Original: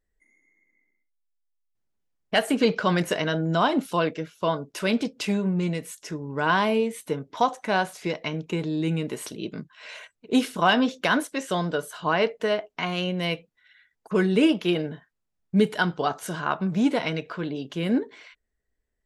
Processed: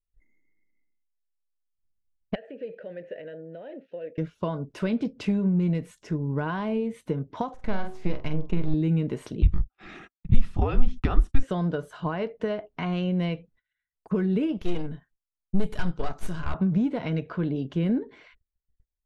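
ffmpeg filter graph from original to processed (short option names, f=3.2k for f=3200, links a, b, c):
-filter_complex "[0:a]asettb=1/sr,asplit=3[a][b][c];[a]atrim=end=2.354[d];[b]atrim=start=2.35:end=4.18,asetpts=PTS-STARTPTS,afade=t=in:d=0.004:c=qsin,afade=t=out:st=1.826:d=0.004:c=qsin,acompressor=threshold=-23dB:ratio=4:attack=3.2:release=140:knee=1:detection=peak,asplit=3[e][f][g];[e]bandpass=f=530:t=q:w=8,volume=0dB[h];[f]bandpass=f=1.84k:t=q:w=8,volume=-6dB[i];[g]bandpass=f=2.48k:t=q:w=8,volume=-9dB[j];[h][i][j]amix=inputs=3:normalize=0,equalizer=f=9k:w=1.1:g=-13.5[k];[c]atrim=start=4.176[l];[d][k]acrossfade=d=0.004:c1=hsin:c2=qsin[m];[m][l]acrossfade=d=0.004:c1=qsin:c2=hsin,asettb=1/sr,asplit=3[n][o][p];[n]atrim=end=7.544[q];[o]atrim=start=7.54:end=8.74,asetpts=PTS-STARTPTS,afade=t=in:d=0.004:c=qsin,afade=t=out:st=1.196:d=0.004:c=qsin,aeval=exprs='if(lt(val(0),0),0.251*val(0),val(0))':c=same,asplit=2[r][s];[s]adelay=46,volume=-9.5dB[t];[r][t]amix=inputs=2:normalize=0,atrim=end_sample=52920,bandreject=f=74.63:t=h:w=4,bandreject=f=149.26:t=h:w=4,bandreject=f=223.89:t=h:w=4,bandreject=f=298.52:t=h:w=4,bandreject=f=373.15:t=h:w=4,bandreject=f=447.78:t=h:w=4,bandreject=f=522.41:t=h:w=4,bandreject=f=597.04:t=h:w=4,bandreject=f=671.67:t=h:w=4,bandreject=f=746.3:t=h:w=4,bandreject=f=820.93:t=h:w=4,bandreject=f=895.56:t=h:w=4,bandreject=f=970.19:t=h:w=4,bandreject=f=1.04482k:t=h:w=4,bandreject=f=1.11945k:t=h:w=4,bandreject=f=1.19408k:t=h:w=4,bandreject=f=1.26871k:t=h:w=4[u];[p]atrim=start=8.736[v];[q][u]acrossfade=d=0.004:c1=hsin:c2=qsin[w];[w][v]acrossfade=d=0.004:c1=qsin:c2=hsin,asettb=1/sr,asplit=3[x][y][z];[x]atrim=end=9.424[aa];[y]atrim=start=9.42:end=11.43,asetpts=PTS-STARTPTS,afade=t=in:d=0.004:c=qsin,afade=t=out:st=2.006:d=0.004:c=qsin,agate=range=-29dB:threshold=-49dB:ratio=16:release=100:detection=peak,lowshelf=f=220:t=q:w=3:g=-9,afreqshift=-270[ab];[z]atrim=start=11.426[ac];[aa][ab]acrossfade=d=0.004:c1=hsin:c2=qsin[ad];[ad][ac]acrossfade=d=0.004:c1=qsin:c2=hsin,asettb=1/sr,asplit=3[ae][af][ag];[ae]atrim=end=14.574[ah];[af]atrim=start=14.57:end=16.54,asetpts=PTS-STARTPTS,afade=t=in:d=0.004:c=qsin,afade=t=out:st=1.966:d=0.004:c=qsin,aemphasis=mode=production:type=75fm,aeval=exprs='(tanh(15.8*val(0)+0.8)-tanh(0.8))/15.8':c=same[ai];[ag]atrim=start=16.536[aj];[ah][ai]acrossfade=d=0.004:c1=hsin:c2=qsin[ak];[ak][aj]acrossfade=d=0.004:c1=qsin:c2=hsin,acompressor=threshold=-25dB:ratio=10,aemphasis=mode=reproduction:type=riaa,agate=range=-23dB:threshold=-55dB:ratio=16:detection=peak,volume=-2.5dB"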